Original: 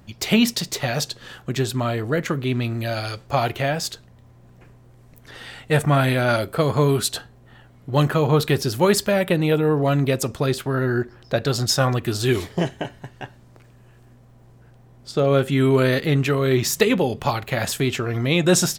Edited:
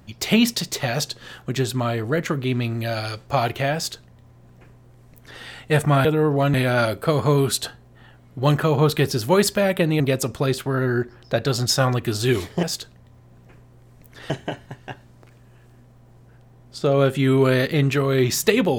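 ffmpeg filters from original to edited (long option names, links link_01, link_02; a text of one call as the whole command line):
ffmpeg -i in.wav -filter_complex "[0:a]asplit=6[link_01][link_02][link_03][link_04][link_05][link_06];[link_01]atrim=end=6.052[link_07];[link_02]atrim=start=9.508:end=10.002[link_08];[link_03]atrim=start=6.048:end=9.512[link_09];[link_04]atrim=start=9.998:end=12.632[link_10];[link_05]atrim=start=3.748:end=5.422[link_11];[link_06]atrim=start=12.628[link_12];[link_07][link_08]acrossfade=duration=0.004:curve1=hsin:curve2=hsin[link_13];[link_13][link_09]acrossfade=duration=0.004:curve1=hsin:curve2=hsin[link_14];[link_14][link_10]acrossfade=duration=0.004:curve1=hsin:curve2=hsin[link_15];[link_15][link_11]acrossfade=duration=0.004:curve1=hsin:curve2=hsin[link_16];[link_16][link_12]acrossfade=duration=0.004:curve1=hsin:curve2=hsin" out.wav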